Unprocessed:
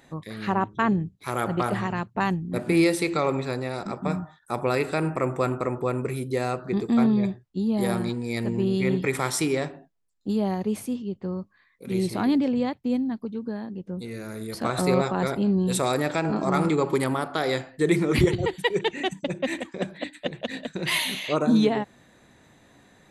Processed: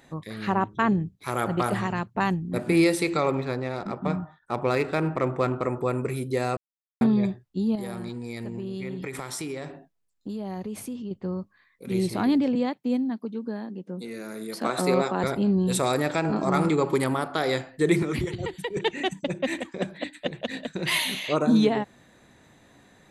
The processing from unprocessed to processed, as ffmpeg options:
ffmpeg -i in.wav -filter_complex "[0:a]asettb=1/sr,asplit=3[link_01][link_02][link_03];[link_01]atrim=end=1.574[link_04];[link_02]atrim=start=1.57:end=1.99,asetpts=PTS-STARTPTS,afade=type=in:duration=0.004:curve=qsin,afade=type=out:start_time=0.416:duration=0.004:curve=qsin,highshelf=frequency=6800:gain=6[link_05];[link_03]atrim=start=1.986[link_06];[link_04][link_05]acrossfade=duration=0.004:curve1=hsin:curve2=qsin[link_07];[link_07][link_06]acrossfade=duration=0.004:curve1=qsin:curve2=hsin,asettb=1/sr,asplit=3[link_08][link_09][link_10];[link_08]atrim=end=3.314[link_11];[link_09]atrim=start=3.31:end=5.63,asetpts=PTS-STARTPTS,afade=type=in:duration=0.004:curve=qsin,afade=type=out:start_time=2.316:duration=0.004:curve=qsin,adynamicsmooth=sensitivity=5:basefreq=2900[link_12];[link_10]atrim=start=5.626[link_13];[link_11][link_12]acrossfade=duration=0.004:curve1=hsin:curve2=qsin[link_14];[link_14][link_13]acrossfade=duration=0.004:curve1=qsin:curve2=hsin,asettb=1/sr,asplit=3[link_15][link_16][link_17];[link_15]atrim=end=7.754[link_18];[link_16]atrim=start=7.75:end=11.11,asetpts=PTS-STARTPTS,afade=type=in:duration=0.004:curve=qsin,afade=type=out:start_time=3.356:duration=0.004:curve=qsin,acompressor=threshold=-30dB:ratio=6:attack=3.2:release=140:knee=1:detection=peak[link_19];[link_17]atrim=start=11.106[link_20];[link_18][link_19]acrossfade=duration=0.004:curve1=hsin:curve2=qsin[link_21];[link_21][link_20]acrossfade=duration=0.004:curve1=qsin:curve2=hsin,asettb=1/sr,asplit=3[link_22][link_23][link_24];[link_22]atrim=end=12.554[link_25];[link_23]atrim=start=12.55:end=15.24,asetpts=PTS-STARTPTS,afade=type=in:duration=0.004:curve=qsin,afade=type=out:start_time=2.686:duration=0.004:curve=qsin,highpass=frequency=180:width=0.5412,highpass=frequency=180:width=1.3066[link_26];[link_24]atrim=start=15.236[link_27];[link_25][link_26]acrossfade=duration=0.004:curve1=hsin:curve2=qsin[link_28];[link_28][link_27]acrossfade=duration=0.004:curve1=qsin:curve2=hsin,asettb=1/sr,asplit=3[link_29][link_30][link_31];[link_29]atrim=end=18.024[link_32];[link_30]atrim=start=18.02:end=18.77,asetpts=PTS-STARTPTS,afade=type=in:duration=0.004:curve=qsin,afade=type=out:start_time=0.746:duration=0.004:curve=qsin,acrossover=split=310|990[link_33][link_34][link_35];[link_33]acompressor=threshold=-29dB:ratio=4[link_36];[link_34]acompressor=threshold=-35dB:ratio=4[link_37];[link_35]acompressor=threshold=-36dB:ratio=4[link_38];[link_36][link_37][link_38]amix=inputs=3:normalize=0[link_39];[link_31]atrim=start=18.766[link_40];[link_32][link_39]acrossfade=duration=0.004:curve1=hsin:curve2=qsin[link_41];[link_41][link_40]acrossfade=duration=0.004:curve1=qsin:curve2=hsin,asplit=3[link_42][link_43][link_44];[link_42]atrim=end=6.57,asetpts=PTS-STARTPTS,afade=type=out:start_time=6.566:duration=0.004:curve=hsin[link_45];[link_43]atrim=start=6.57:end=7.01,asetpts=PTS-STARTPTS,volume=0[link_46];[link_44]atrim=start=7.01,asetpts=PTS-STARTPTS,afade=type=in:duration=0.004:curve=hsin[link_47];[link_45][link_46][link_47]concat=n=3:v=0:a=1" out.wav

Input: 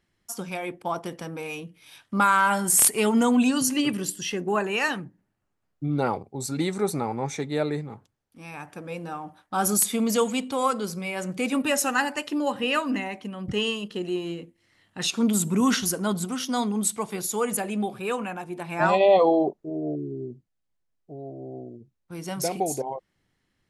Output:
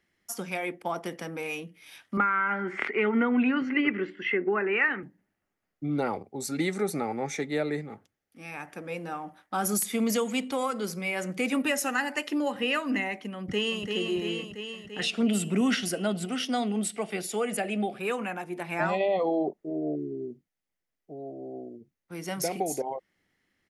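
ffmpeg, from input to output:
ffmpeg -i in.wav -filter_complex "[0:a]asettb=1/sr,asplit=3[link_01][link_02][link_03];[link_01]atrim=end=2.174[link_04];[link_02]atrim=start=2.17:end=5.03,asetpts=PTS-STARTPTS,afade=type=in:duration=0.004:curve=qsin,afade=type=out:start_time=2.856:duration=0.004:curve=qsin,highpass=130,equalizer=frequency=160:width_type=q:width=4:gain=-9,equalizer=frequency=380:width_type=q:width=4:gain=7,equalizer=frequency=650:width_type=q:width=4:gain=-4,equalizer=frequency=1400:width_type=q:width=4:gain=8,equalizer=frequency=2100:width_type=q:width=4:gain=10,lowpass=frequency=2500:width=0.5412,lowpass=frequency=2500:width=1.3066[link_05];[link_03]atrim=start=5.026[link_06];[link_04][link_05]acrossfade=duration=0.004:curve1=hsin:curve2=qsin[link_07];[link_07][link_06]acrossfade=duration=0.004:curve1=qsin:curve2=hsin,asettb=1/sr,asplit=3[link_08][link_09][link_10];[link_08]atrim=end=6.364[link_11];[link_09]atrim=start=6.36:end=8.52,asetpts=PTS-STARTPTS,afade=type=in:duration=0.004:curve=qsin,afade=type=out:start_time=2.156:duration=0.004:curve=qsin,bandreject=frequency=990:width=7.2[link_12];[link_10]atrim=start=8.516[link_13];[link_11][link_12]acrossfade=duration=0.004:curve1=hsin:curve2=qsin[link_14];[link_14][link_13]acrossfade=duration=0.004:curve1=qsin:curve2=hsin,asplit=2[link_15][link_16];[link_16]afade=type=in:start_time=13.37:duration=0.01,afade=type=out:start_time=13.88:duration=0.01,aecho=0:1:340|680|1020|1360|1700|2040|2380|2720|3060|3400|3740|4080:0.530884|0.371619|0.260133|0.182093|0.127465|0.0892257|0.062458|0.0437206|0.0306044|0.0214231|0.0149962|0.0104973[link_17];[link_15][link_17]amix=inputs=2:normalize=0,asettb=1/sr,asplit=3[link_18][link_19][link_20];[link_18]atrim=end=15.004[link_21];[link_19]atrim=start=15:end=18,asetpts=PTS-STARTPTS,afade=type=in:duration=0.004:curve=qsin,afade=type=out:start_time=2.996:duration=0.004:curve=qsin,highpass=100,equalizer=frequency=670:width_type=q:width=4:gain=7,equalizer=frequency=1000:width_type=q:width=4:gain=-9,equalizer=frequency=2800:width_type=q:width=4:gain=5,equalizer=frequency=6500:width_type=q:width=4:gain=-9,lowpass=frequency=9500:width=0.5412,lowpass=frequency=9500:width=1.3066[link_22];[link_20]atrim=start=17.996[link_23];[link_21][link_22]acrossfade=duration=0.004:curve1=hsin:curve2=qsin[link_24];[link_24][link_23]acrossfade=duration=0.004:curve1=qsin:curve2=hsin,lowshelf=frequency=85:gain=-11.5,acrossover=split=230[link_25][link_26];[link_26]acompressor=threshold=-25dB:ratio=4[link_27];[link_25][link_27]amix=inputs=2:normalize=0,equalizer=frequency=125:width_type=o:width=0.33:gain=-9,equalizer=frequency=1000:width_type=o:width=0.33:gain=-4,equalizer=frequency=2000:width_type=o:width=0.33:gain=6,equalizer=frequency=4000:width_type=o:width=0.33:gain=-3,equalizer=frequency=8000:width_type=o:width=0.33:gain=-4" out.wav

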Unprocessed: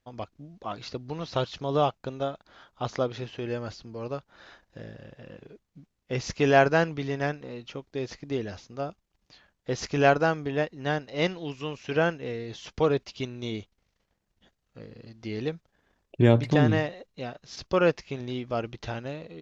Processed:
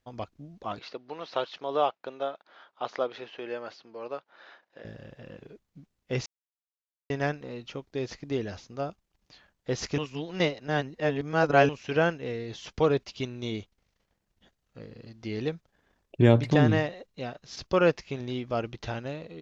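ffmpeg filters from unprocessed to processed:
ffmpeg -i in.wav -filter_complex "[0:a]asettb=1/sr,asplit=3[link_01][link_02][link_03];[link_01]atrim=end=0.794[link_04];[link_02]atrim=start=0.79:end=4.85,asetpts=PTS-STARTPTS,afade=type=in:duration=0.004:curve=qsin,afade=type=out:start_time=4.056:duration=0.004:curve=qsin,highpass=430,lowpass=3700[link_05];[link_03]atrim=start=4.846[link_06];[link_04][link_05]acrossfade=duration=0.004:curve1=hsin:curve2=qsin[link_07];[link_07][link_06]acrossfade=duration=0.004:curve1=qsin:curve2=hsin,asplit=5[link_08][link_09][link_10][link_11][link_12];[link_08]atrim=end=6.26,asetpts=PTS-STARTPTS,afade=type=out:start_time=6.256:duration=0.004:curve=hsin[link_13];[link_09]atrim=start=6.26:end=7.1,asetpts=PTS-STARTPTS,volume=0[link_14];[link_10]atrim=start=7.1:end=9.982,asetpts=PTS-STARTPTS,afade=type=in:duration=0.004:curve=hsin[link_15];[link_11]atrim=start=9.978:end=11.692,asetpts=PTS-STARTPTS,areverse[link_16];[link_12]atrim=start=11.688[link_17];[link_13][link_14][link_15]concat=n=3:v=0:a=1[link_18];[link_18][link_16]acrossfade=duration=0.004:curve1=hsin:curve2=hsin[link_19];[link_19][link_17]acrossfade=duration=0.004:curve1=hsin:curve2=hsin" out.wav

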